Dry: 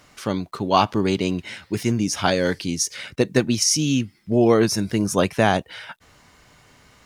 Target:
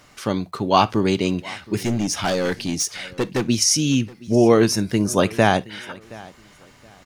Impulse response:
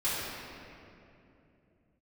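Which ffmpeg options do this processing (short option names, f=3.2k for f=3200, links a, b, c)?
-filter_complex "[0:a]asettb=1/sr,asplit=3[a][b][c];[a]atrim=end=1.794[d];[b]atrim=start=1.79:end=3.49,asetpts=PTS-STARTPTS,afade=t=in:d=0.004:c=qsin,afade=t=out:st=1.696:d=0.004:c=qsin,volume=19dB,asoftclip=hard,volume=-19dB[e];[c]atrim=start=3.486[f];[d][e]acrossfade=d=0.004:c1=hsin:c2=qsin[g];[g][f]acrossfade=d=0.004:c1=qsin:c2=hsin,aecho=1:1:721|1442:0.0841|0.021,asplit=2[h][i];[1:a]atrim=start_sample=2205,atrim=end_sample=3087[j];[i][j]afir=irnorm=-1:irlink=0,volume=-21dB[k];[h][k]amix=inputs=2:normalize=0,volume=1dB"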